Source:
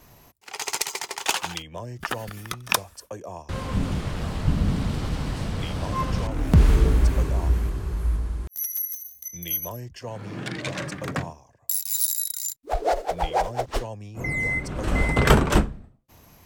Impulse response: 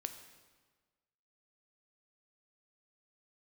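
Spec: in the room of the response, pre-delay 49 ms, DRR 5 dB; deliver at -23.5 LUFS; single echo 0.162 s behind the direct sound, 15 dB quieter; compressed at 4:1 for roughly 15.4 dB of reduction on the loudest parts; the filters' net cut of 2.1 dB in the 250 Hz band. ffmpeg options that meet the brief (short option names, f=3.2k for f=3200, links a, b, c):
-filter_complex "[0:a]equalizer=f=250:t=o:g=-3,acompressor=threshold=-31dB:ratio=4,aecho=1:1:162:0.178,asplit=2[a][b];[1:a]atrim=start_sample=2205,adelay=49[c];[b][c]afir=irnorm=-1:irlink=0,volume=-3dB[d];[a][d]amix=inputs=2:normalize=0,volume=10dB"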